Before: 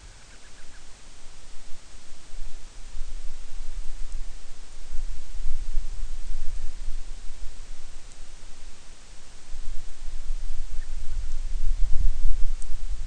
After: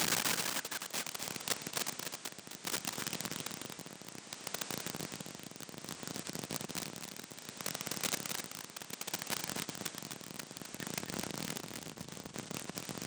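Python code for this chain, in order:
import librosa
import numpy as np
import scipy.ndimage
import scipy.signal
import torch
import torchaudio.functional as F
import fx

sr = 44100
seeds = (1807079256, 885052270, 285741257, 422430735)

p1 = x + 0.5 * 10.0 ** (-27.0 / 20.0) * np.sign(x)
p2 = p1 * (1.0 - 0.62 / 2.0 + 0.62 / 2.0 * np.cos(2.0 * np.pi * 0.63 * (np.arange(len(p1)) / sr)))
p3 = 10.0 ** (-16.5 / 20.0) * (np.abs((p2 / 10.0 ** (-16.5 / 20.0) + 3.0) % 4.0 - 2.0) - 1.0)
p4 = p2 + F.gain(torch.from_numpy(p3), -6.0).numpy()
p5 = scipy.signal.sosfilt(scipy.signal.butter(4, 160.0, 'highpass', fs=sr, output='sos'), p4)
p6 = p5 + fx.echo_single(p5, sr, ms=257, db=-6.5, dry=0)
y = F.gain(torch.from_numpy(p6), 1.0).numpy()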